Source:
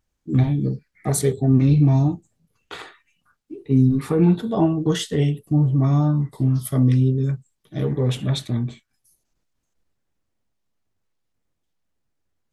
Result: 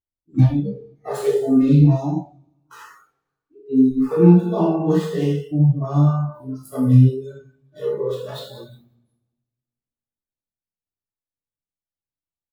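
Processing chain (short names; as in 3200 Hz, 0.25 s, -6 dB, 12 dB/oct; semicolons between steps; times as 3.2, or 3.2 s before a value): median filter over 15 samples; bell 2000 Hz -4.5 dB 0.34 oct; on a send: feedback echo 0.176 s, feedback 42%, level -14 dB; on the sum: two-slope reverb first 0.83 s, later 2.1 s, from -24 dB, DRR -5 dB; spectral noise reduction 22 dB; gain -3 dB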